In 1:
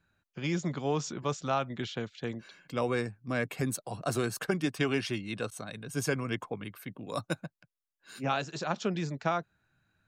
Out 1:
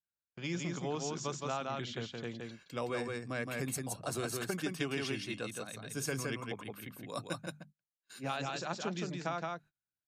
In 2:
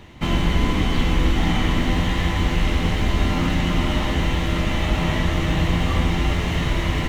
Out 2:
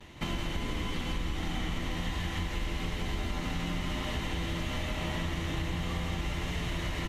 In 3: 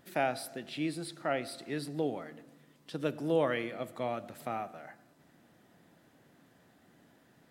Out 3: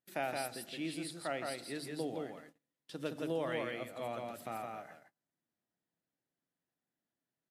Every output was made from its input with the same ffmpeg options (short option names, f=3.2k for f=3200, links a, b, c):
-filter_complex "[0:a]highshelf=f=3.1k:g=5,bandreject=f=50:t=h:w=6,bandreject=f=100:t=h:w=6,bandreject=f=150:t=h:w=6,bandreject=f=200:t=h:w=6,bandreject=f=250:t=h:w=6,asplit=2[a][b];[b]aecho=0:1:168:0.668[c];[a][c]amix=inputs=2:normalize=0,acompressor=threshold=-25dB:ratio=4,agate=range=-26dB:threshold=-49dB:ratio=16:detection=peak,volume=-5.5dB" -ar 32000 -c:a libmp3lame -b:a 80k